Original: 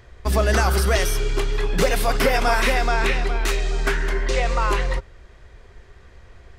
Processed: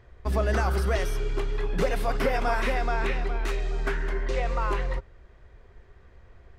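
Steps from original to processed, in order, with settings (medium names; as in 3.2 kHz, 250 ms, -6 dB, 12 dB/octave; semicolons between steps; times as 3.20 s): treble shelf 3 kHz -11 dB; trim -5.5 dB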